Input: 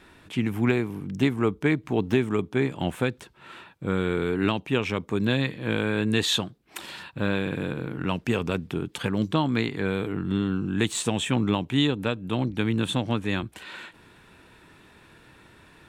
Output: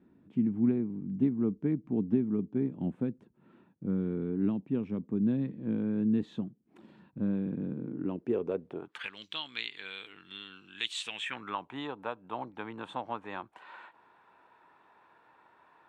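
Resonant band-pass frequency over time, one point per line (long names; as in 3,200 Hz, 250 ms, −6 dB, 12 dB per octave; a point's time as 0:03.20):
resonant band-pass, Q 2.4
0:07.75 220 Hz
0:08.77 580 Hz
0:09.11 3,200 Hz
0:10.98 3,200 Hz
0:11.72 910 Hz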